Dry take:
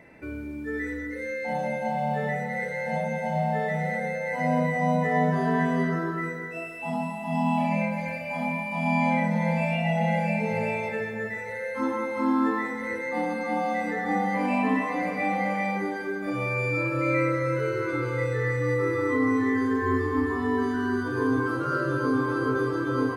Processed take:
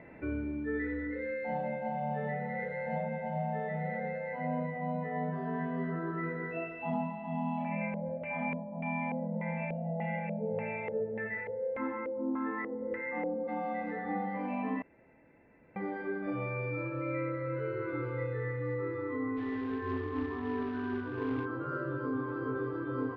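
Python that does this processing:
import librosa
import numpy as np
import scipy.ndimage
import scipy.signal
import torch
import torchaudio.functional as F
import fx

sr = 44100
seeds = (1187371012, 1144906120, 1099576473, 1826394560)

y = fx.filter_lfo_lowpass(x, sr, shape='square', hz=1.7, low_hz=500.0, high_hz=2200.0, q=2.4, at=(7.64, 13.47), fade=0.02)
y = fx.quant_companded(y, sr, bits=4, at=(19.36, 21.44), fade=0.02)
y = fx.edit(y, sr, fx.room_tone_fill(start_s=14.82, length_s=0.94), tone=tone)
y = scipy.signal.sosfilt(scipy.signal.butter(4, 3500.0, 'lowpass', fs=sr, output='sos'), y)
y = fx.high_shelf(y, sr, hz=2700.0, db=-11.5)
y = fx.rider(y, sr, range_db=10, speed_s=0.5)
y = y * librosa.db_to_amplitude(-8.5)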